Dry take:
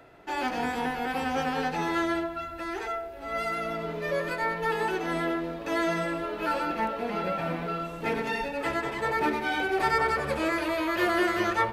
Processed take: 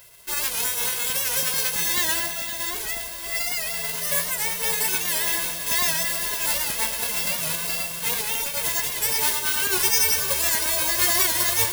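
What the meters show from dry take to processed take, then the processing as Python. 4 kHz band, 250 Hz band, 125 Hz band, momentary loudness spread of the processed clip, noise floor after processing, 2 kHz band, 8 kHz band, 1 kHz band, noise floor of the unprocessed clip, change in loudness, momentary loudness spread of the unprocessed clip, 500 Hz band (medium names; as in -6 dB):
+13.5 dB, -10.5 dB, -1.5 dB, 7 LU, -32 dBFS, +2.5 dB, +26.5 dB, -5.0 dB, -39 dBFS, +7.5 dB, 7 LU, -6.0 dB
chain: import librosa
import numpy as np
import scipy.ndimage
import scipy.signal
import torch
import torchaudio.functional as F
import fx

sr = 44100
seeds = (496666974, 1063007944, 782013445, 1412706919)

p1 = fx.envelope_flatten(x, sr, power=0.1)
p2 = fx.peak_eq(p1, sr, hz=11000.0, db=9.5, octaves=0.22)
p3 = p2 + 0.92 * np.pad(p2, (int(1.9 * sr / 1000.0), 0))[:len(p2)]
p4 = fx.filter_lfo_notch(p3, sr, shape='saw_up', hz=9.1, low_hz=210.0, high_hz=3000.0, q=2.0)
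p5 = p4 + fx.echo_feedback(p4, sr, ms=512, feedback_pct=40, wet_db=-10.0, dry=0)
p6 = (np.kron(scipy.signal.resample_poly(p5, 1, 2), np.eye(2)[0]) * 2)[:len(p5)]
y = fx.record_warp(p6, sr, rpm=78.0, depth_cents=100.0)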